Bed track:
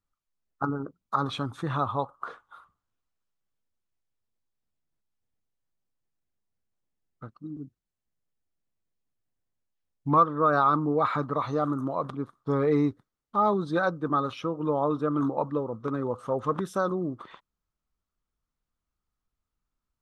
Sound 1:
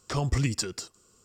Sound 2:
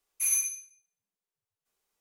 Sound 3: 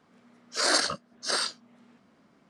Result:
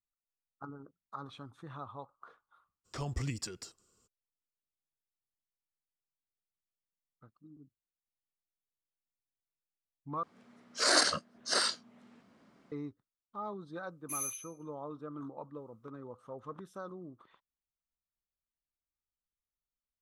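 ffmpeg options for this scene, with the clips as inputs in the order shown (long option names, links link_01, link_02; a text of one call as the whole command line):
ffmpeg -i bed.wav -i cue0.wav -i cue1.wav -i cue2.wav -filter_complex "[0:a]volume=-17dB,asplit=2[link_01][link_02];[link_01]atrim=end=10.234[link_03];[3:a]atrim=end=2.49,asetpts=PTS-STARTPTS,volume=-2dB[link_04];[link_02]atrim=start=12.716[link_05];[1:a]atrim=end=1.24,asetpts=PTS-STARTPTS,volume=-10dB,afade=type=in:duration=0.02,afade=type=out:start_time=1.22:duration=0.02,adelay=2840[link_06];[2:a]atrim=end=2,asetpts=PTS-STARTPTS,volume=-11.5dB,afade=type=in:duration=0.004:curve=hsin,afade=type=out:start_time=1.996:duration=0.004:curve=hsin,adelay=13890[link_07];[link_03][link_04]acrossfade=duration=0.004:curve1=hsin:curve2=hsin[link_08];[link_08][link_05]acrossfade=duration=0.004:curve1=hsin:curve2=hsin[link_09];[link_09][link_06][link_07]amix=inputs=3:normalize=0" out.wav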